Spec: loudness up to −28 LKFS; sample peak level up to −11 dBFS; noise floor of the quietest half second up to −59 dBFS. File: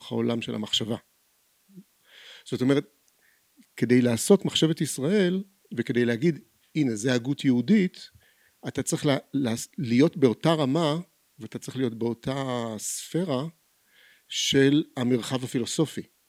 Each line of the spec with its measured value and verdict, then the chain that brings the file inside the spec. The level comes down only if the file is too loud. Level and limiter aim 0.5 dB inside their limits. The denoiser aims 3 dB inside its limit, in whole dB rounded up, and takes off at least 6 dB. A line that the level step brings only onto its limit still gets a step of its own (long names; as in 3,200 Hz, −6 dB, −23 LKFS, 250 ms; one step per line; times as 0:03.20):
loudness −25.5 LKFS: out of spec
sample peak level −5.5 dBFS: out of spec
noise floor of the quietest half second −67 dBFS: in spec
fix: level −3 dB
brickwall limiter −11.5 dBFS